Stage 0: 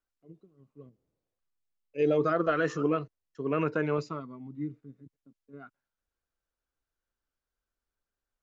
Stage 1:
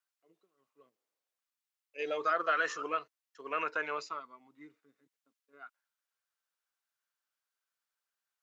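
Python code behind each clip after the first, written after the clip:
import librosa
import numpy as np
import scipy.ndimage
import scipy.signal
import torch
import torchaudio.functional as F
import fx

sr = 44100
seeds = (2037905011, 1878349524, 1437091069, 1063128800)

y = scipy.signal.sosfilt(scipy.signal.butter(2, 1000.0, 'highpass', fs=sr, output='sos'), x)
y = y * librosa.db_to_amplitude(2.5)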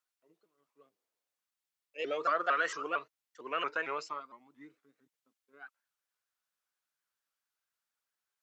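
y = fx.vibrato_shape(x, sr, shape='saw_up', rate_hz=4.4, depth_cents=160.0)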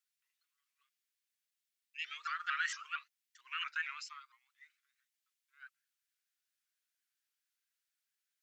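y = scipy.signal.sosfilt(scipy.signal.cheby2(4, 50, 630.0, 'highpass', fs=sr, output='sos'), x)
y = y * librosa.db_to_amplitude(1.0)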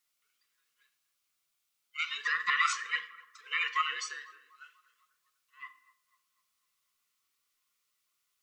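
y = fx.band_swap(x, sr, width_hz=500)
y = fx.echo_banded(y, sr, ms=247, feedback_pct=53, hz=840.0, wet_db=-18.5)
y = fx.room_shoebox(y, sr, seeds[0], volume_m3=92.0, walls='mixed', distance_m=0.31)
y = y * librosa.db_to_amplitude(8.0)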